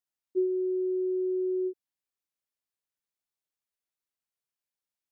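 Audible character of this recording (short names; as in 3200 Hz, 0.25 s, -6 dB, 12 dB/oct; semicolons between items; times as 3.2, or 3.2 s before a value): noise floor -92 dBFS; spectral tilt +1.0 dB/oct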